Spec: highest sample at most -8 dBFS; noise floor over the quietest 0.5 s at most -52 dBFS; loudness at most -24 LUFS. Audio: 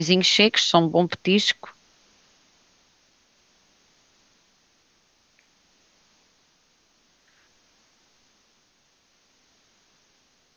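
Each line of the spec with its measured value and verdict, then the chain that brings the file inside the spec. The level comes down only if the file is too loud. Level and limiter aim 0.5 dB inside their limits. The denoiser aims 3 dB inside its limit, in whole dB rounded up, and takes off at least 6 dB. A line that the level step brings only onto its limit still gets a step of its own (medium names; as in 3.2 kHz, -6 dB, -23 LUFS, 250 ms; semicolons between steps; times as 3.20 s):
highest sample -2.0 dBFS: fail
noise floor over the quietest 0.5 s -65 dBFS: pass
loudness -19.0 LUFS: fail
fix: trim -5.5 dB; peak limiter -8.5 dBFS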